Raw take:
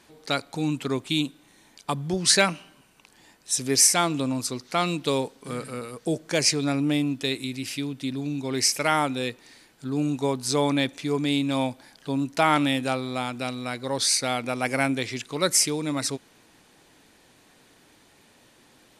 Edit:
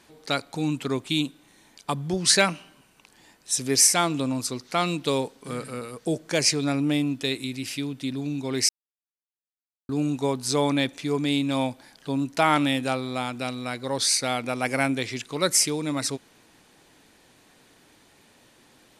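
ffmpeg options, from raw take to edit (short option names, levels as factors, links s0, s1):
-filter_complex "[0:a]asplit=3[s0][s1][s2];[s0]atrim=end=8.69,asetpts=PTS-STARTPTS,afade=t=out:st=8.686:d=0.004:c=hsin[s3];[s1]atrim=start=8.69:end=9.89,asetpts=PTS-STARTPTS,volume=0[s4];[s2]atrim=start=9.89,asetpts=PTS-STARTPTS,afade=t=in:d=0.004:c=hsin[s5];[s3][s4][s5]concat=n=3:v=0:a=1"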